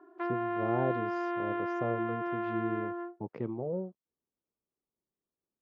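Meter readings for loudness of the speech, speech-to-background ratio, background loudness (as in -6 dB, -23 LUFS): -37.5 LUFS, -3.0 dB, -34.5 LUFS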